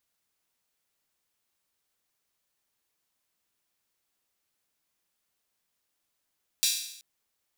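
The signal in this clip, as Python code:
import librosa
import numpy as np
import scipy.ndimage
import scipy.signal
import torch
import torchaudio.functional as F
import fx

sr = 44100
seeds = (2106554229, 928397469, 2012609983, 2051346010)

y = fx.drum_hat_open(sr, length_s=0.38, from_hz=3800.0, decay_s=0.76)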